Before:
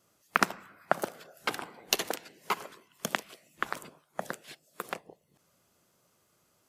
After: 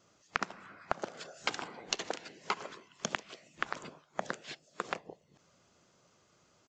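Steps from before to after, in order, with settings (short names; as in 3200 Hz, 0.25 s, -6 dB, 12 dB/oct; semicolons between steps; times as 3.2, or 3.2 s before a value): 1.17–1.68 high shelf 5400 Hz +12 dB; compressor 8:1, threshold -33 dBFS, peak gain reduction 16 dB; downsampling 16000 Hz; gain +3.5 dB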